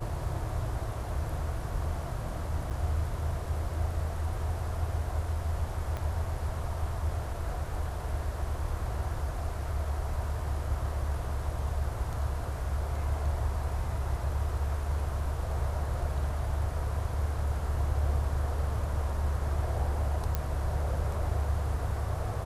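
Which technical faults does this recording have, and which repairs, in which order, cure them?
2.70–2.71 s: dropout 7.5 ms
5.97 s: pop -23 dBFS
20.35 s: pop -15 dBFS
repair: de-click; interpolate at 2.70 s, 7.5 ms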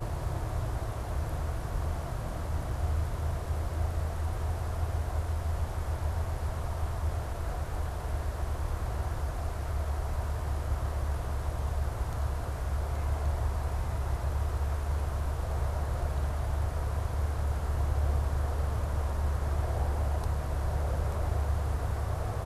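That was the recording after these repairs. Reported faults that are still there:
5.97 s: pop

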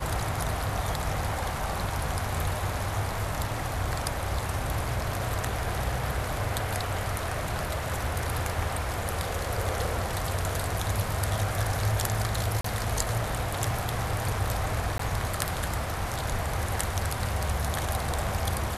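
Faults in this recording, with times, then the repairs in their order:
12.61–12.64 s: dropout 34 ms
14.98–14.99 s: dropout 14 ms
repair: interpolate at 12.61 s, 34 ms; interpolate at 14.98 s, 14 ms

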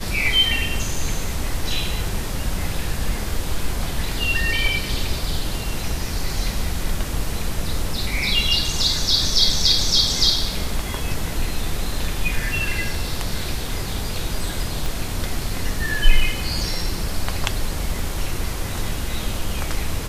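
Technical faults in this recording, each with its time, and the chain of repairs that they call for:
14.86 s: pop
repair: de-click

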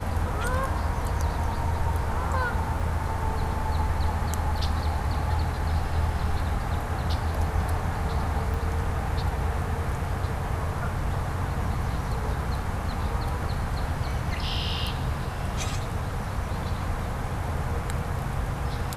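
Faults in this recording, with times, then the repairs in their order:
2.80 s: dropout 3 ms
8.54 s: dropout 2.6 ms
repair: interpolate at 2.80 s, 3 ms; interpolate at 8.54 s, 2.6 ms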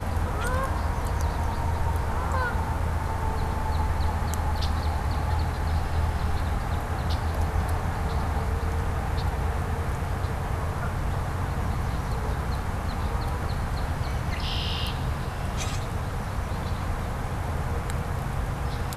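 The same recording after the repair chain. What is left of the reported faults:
nothing left

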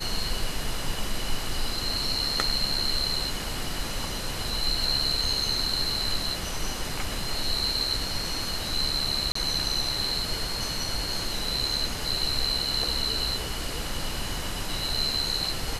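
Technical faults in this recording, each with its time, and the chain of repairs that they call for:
9.32–9.35 s: dropout 34 ms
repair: interpolate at 9.32 s, 34 ms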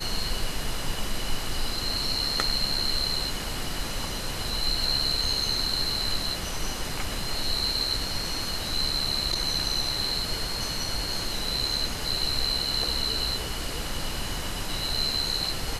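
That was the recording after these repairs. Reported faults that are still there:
nothing left

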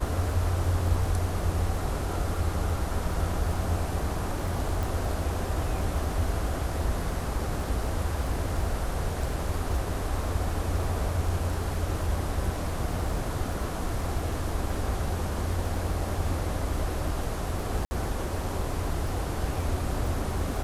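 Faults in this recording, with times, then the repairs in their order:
crackle 27 per s -35 dBFS
4.83 s: pop
17.85–17.91 s: dropout 60 ms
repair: de-click; interpolate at 17.85 s, 60 ms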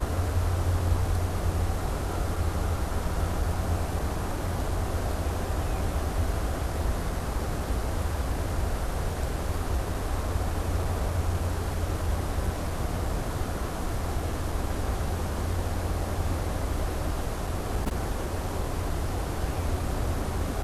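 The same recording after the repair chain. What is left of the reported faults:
nothing left

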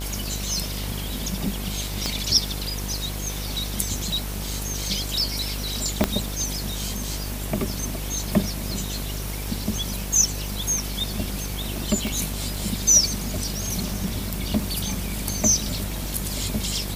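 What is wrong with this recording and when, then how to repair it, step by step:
buzz 50 Hz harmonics 22 -31 dBFS
crackle 32 per s -32 dBFS
2.06 s: pop -10 dBFS
6.04 s: pop -3 dBFS
12.07 s: pop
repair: de-click; de-hum 50 Hz, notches 22

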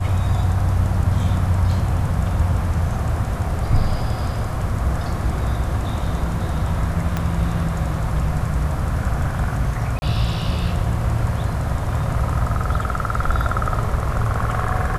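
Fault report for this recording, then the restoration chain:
7.17 s: pop -9 dBFS
9.99–10.02 s: dropout 30 ms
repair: de-click; interpolate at 9.99 s, 30 ms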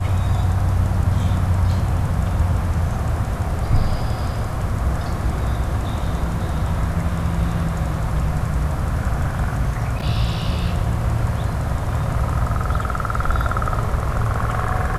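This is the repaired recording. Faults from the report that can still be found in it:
7.17 s: pop

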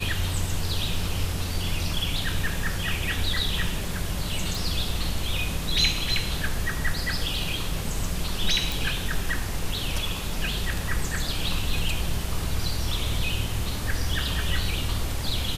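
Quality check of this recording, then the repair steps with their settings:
4.55 s: pop
8.72 s: pop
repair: de-click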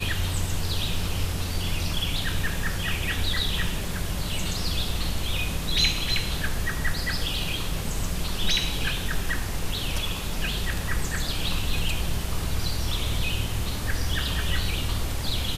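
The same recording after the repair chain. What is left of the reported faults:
nothing left

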